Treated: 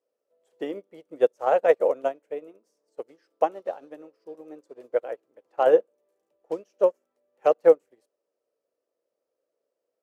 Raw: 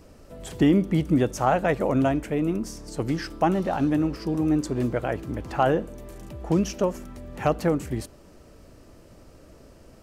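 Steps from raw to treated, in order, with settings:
high-pass with resonance 490 Hz, resonance Q 4.1
expander for the loud parts 2.5 to 1, over −33 dBFS

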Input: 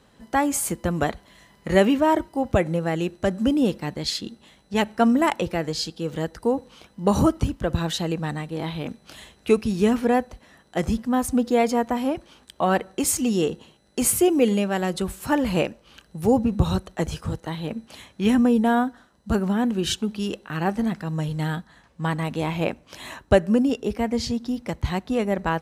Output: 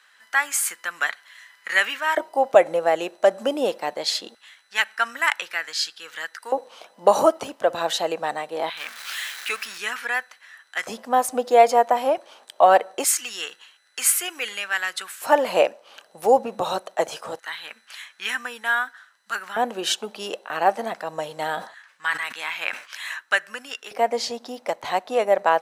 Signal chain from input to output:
0:08.77–0:09.78: converter with a step at zero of −32.5 dBFS
auto-filter high-pass square 0.23 Hz 630–1,600 Hz
0:21.44–0:23.04: level that may fall only so fast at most 130 dB per second
level +2.5 dB

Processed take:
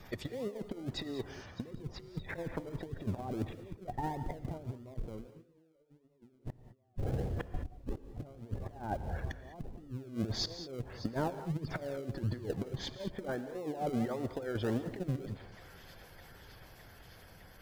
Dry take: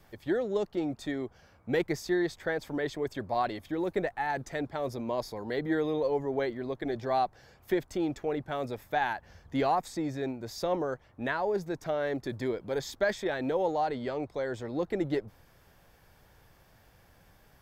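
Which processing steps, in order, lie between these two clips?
source passing by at 0:06.76, 16 m/s, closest 9.5 metres
treble cut that deepens with the level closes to 420 Hz, closed at −45.5 dBFS
high-shelf EQ 2,300 Hz +5.5 dB
on a send: delay with a high-pass on its return 610 ms, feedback 81%, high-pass 2,500 Hz, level −15 dB
on the sum: compressor whose output falls as the input rises −58 dBFS, ratio −0.5
gate on every frequency bin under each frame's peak −25 dB strong
in parallel at −11 dB: sample-and-hold swept by an LFO 39×, swing 60% 1.6 Hz
on the sum: reverb whose tail is shaped and stops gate 230 ms rising, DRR 10.5 dB
level +15.5 dB

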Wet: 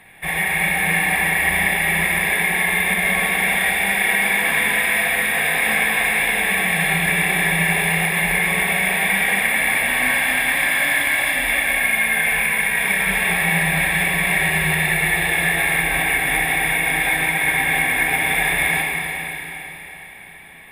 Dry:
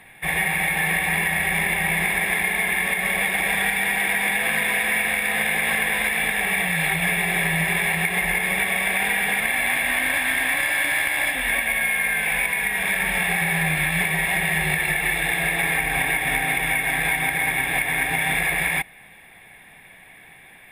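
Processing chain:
four-comb reverb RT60 3.9 s, combs from 28 ms, DRR −1 dB

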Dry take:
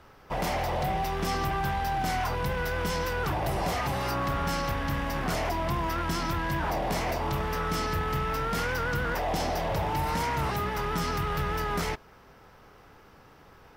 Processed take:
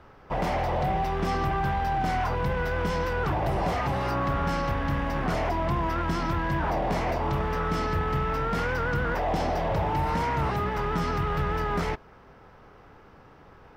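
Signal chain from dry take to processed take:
low-pass filter 1,900 Hz 6 dB per octave
level +3 dB

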